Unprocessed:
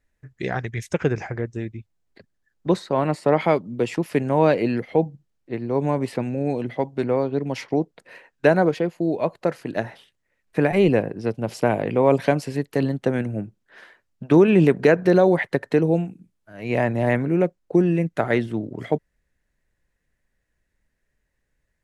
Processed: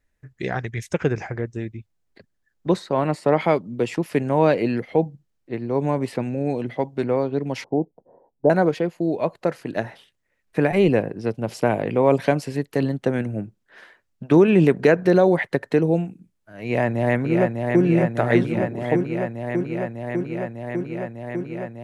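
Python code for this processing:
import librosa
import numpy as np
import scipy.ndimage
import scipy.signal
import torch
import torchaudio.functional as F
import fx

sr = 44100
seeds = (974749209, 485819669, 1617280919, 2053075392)

y = fx.ellip_lowpass(x, sr, hz=860.0, order=4, stop_db=70, at=(7.64, 8.5))
y = fx.echo_throw(y, sr, start_s=16.64, length_s=1.19, ms=600, feedback_pct=85, wet_db=-4.0)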